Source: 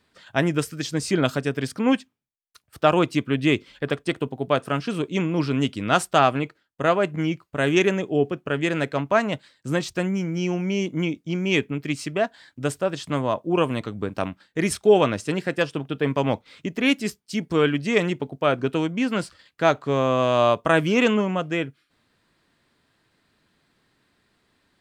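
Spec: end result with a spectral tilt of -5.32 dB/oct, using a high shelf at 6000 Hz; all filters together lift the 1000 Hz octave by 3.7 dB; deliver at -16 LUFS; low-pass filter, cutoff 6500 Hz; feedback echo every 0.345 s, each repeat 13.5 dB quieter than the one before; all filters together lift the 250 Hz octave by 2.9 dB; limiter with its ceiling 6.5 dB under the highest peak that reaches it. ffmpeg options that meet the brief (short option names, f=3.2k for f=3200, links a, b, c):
-af "lowpass=6.5k,equalizer=f=250:t=o:g=3.5,equalizer=f=1k:t=o:g=5,highshelf=f=6k:g=-4.5,alimiter=limit=-8.5dB:level=0:latency=1,aecho=1:1:345|690:0.211|0.0444,volume=6.5dB"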